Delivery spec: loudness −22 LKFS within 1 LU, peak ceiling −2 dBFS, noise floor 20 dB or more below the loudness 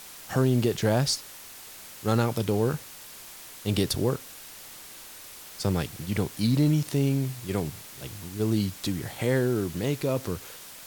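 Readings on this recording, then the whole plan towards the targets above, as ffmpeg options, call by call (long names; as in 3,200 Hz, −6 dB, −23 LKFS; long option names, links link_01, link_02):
background noise floor −45 dBFS; target noise floor −48 dBFS; integrated loudness −27.5 LKFS; sample peak −11.0 dBFS; target loudness −22.0 LKFS
→ -af "afftdn=noise_reduction=6:noise_floor=-45"
-af "volume=5.5dB"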